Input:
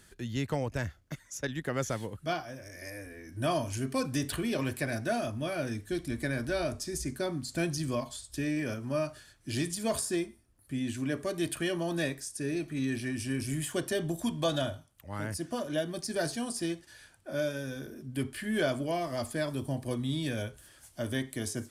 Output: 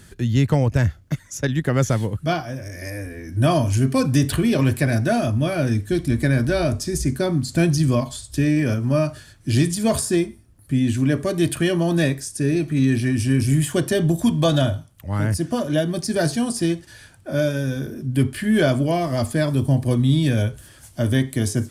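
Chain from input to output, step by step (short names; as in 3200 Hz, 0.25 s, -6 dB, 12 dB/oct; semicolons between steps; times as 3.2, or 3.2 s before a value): bell 110 Hz +9.5 dB 2.4 oct; gain +8.5 dB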